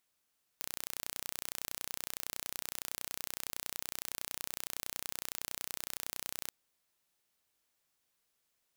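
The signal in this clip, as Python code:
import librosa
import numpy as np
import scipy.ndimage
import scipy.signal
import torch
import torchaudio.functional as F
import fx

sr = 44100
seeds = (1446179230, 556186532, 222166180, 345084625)

y = 10.0 ** (-11.0 / 20.0) * (np.mod(np.arange(round(5.9 * sr)), round(sr / 30.8)) == 0)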